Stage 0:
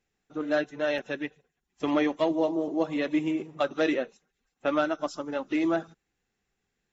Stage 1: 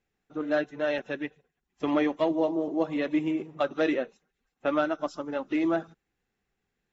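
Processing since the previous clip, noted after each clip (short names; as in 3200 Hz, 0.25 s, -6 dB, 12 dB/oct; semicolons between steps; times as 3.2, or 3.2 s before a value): high shelf 5500 Hz -10.5 dB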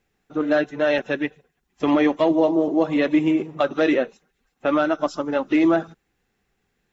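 limiter -18 dBFS, peak gain reduction 5.5 dB; gain +9 dB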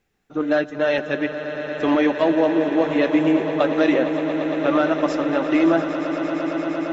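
swelling echo 0.115 s, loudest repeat 8, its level -14 dB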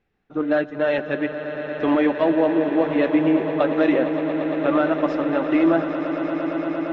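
air absorption 230 m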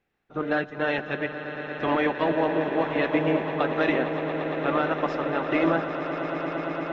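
spectral limiter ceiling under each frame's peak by 12 dB; gain -5 dB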